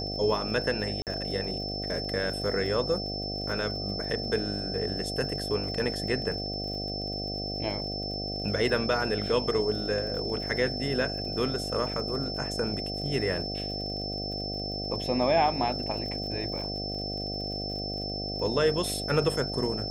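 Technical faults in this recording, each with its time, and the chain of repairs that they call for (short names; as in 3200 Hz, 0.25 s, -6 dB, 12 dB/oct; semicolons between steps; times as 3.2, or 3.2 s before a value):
buzz 50 Hz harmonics 15 -36 dBFS
crackle 48/s -39 dBFS
tone 5300 Hz -34 dBFS
1.02–1.07 gap 48 ms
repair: de-click; de-hum 50 Hz, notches 15; notch 5300 Hz, Q 30; interpolate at 1.02, 48 ms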